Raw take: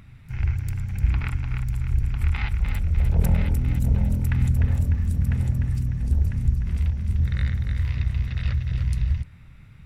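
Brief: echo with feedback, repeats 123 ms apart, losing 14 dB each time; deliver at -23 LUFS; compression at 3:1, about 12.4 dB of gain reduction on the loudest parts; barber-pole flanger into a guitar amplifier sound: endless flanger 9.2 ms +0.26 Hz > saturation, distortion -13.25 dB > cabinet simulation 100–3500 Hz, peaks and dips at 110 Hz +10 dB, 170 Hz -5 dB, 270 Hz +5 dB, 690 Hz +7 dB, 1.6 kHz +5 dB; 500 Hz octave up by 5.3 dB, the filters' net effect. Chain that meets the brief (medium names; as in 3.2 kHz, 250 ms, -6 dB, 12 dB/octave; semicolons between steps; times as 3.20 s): peaking EQ 500 Hz +4 dB; compression 3:1, threshold -32 dBFS; feedback delay 123 ms, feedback 20%, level -14 dB; endless flanger 9.2 ms +0.26 Hz; saturation -32.5 dBFS; cabinet simulation 100–3500 Hz, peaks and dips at 110 Hz +10 dB, 170 Hz -5 dB, 270 Hz +5 dB, 690 Hz +7 dB, 1.6 kHz +5 dB; trim +18.5 dB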